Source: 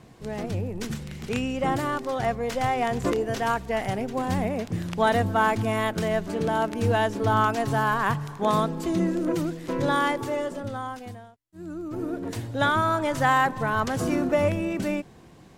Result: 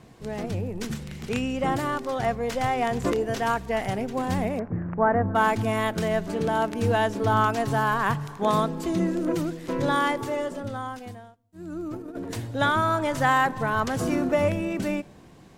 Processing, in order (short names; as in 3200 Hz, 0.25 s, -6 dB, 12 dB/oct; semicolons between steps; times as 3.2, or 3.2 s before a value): 4.59–5.35 inverse Chebyshev low-pass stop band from 3400 Hz, stop band 40 dB; 11.72–12.36 negative-ratio compressor -33 dBFS, ratio -0.5; on a send: reverb RT60 0.75 s, pre-delay 4 ms, DRR 23 dB